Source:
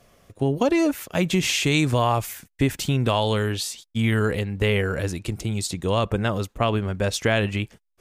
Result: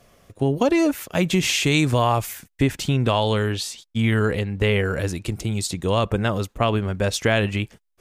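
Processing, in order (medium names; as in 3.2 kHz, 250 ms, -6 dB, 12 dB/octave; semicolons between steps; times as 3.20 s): 2.62–4.85 s: treble shelf 9.5 kHz -8 dB; trim +1.5 dB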